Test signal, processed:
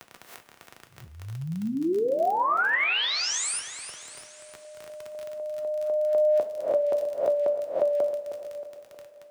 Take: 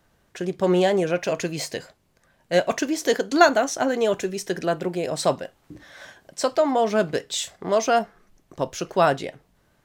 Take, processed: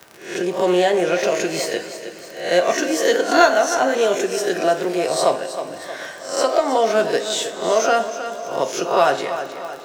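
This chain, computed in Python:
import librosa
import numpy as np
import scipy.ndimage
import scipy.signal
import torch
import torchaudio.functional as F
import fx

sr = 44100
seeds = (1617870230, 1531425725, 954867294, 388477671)

p1 = fx.spec_swells(x, sr, rise_s=0.39)
p2 = scipy.signal.sosfilt(scipy.signal.butter(2, 280.0, 'highpass', fs=sr, output='sos'), p1)
p3 = np.clip(10.0 ** (13.5 / 20.0) * p2, -1.0, 1.0) / 10.0 ** (13.5 / 20.0)
p4 = p2 + (p3 * 10.0 ** (-11.0 / 20.0))
p5 = fx.dmg_crackle(p4, sr, seeds[0], per_s=25.0, level_db=-32.0)
p6 = p5 + fx.echo_feedback(p5, sr, ms=314, feedback_pct=35, wet_db=-14.0, dry=0)
p7 = fx.rev_double_slope(p6, sr, seeds[1], early_s=0.33, late_s=2.9, knee_db=-18, drr_db=6.0)
y = fx.band_squash(p7, sr, depth_pct=40)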